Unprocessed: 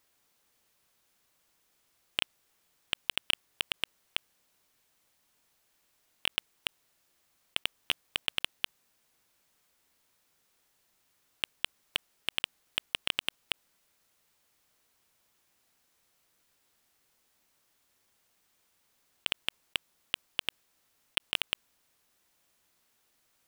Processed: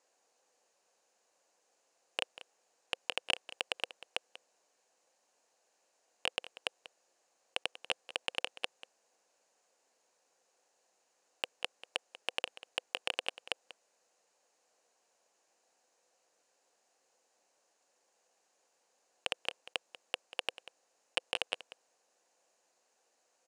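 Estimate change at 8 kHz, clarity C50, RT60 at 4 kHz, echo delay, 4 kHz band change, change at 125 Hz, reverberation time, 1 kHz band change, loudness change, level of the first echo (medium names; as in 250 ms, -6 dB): -5.5 dB, no reverb, no reverb, 190 ms, -5.5 dB, under -15 dB, no reverb, +2.0 dB, -4.5 dB, -16.0 dB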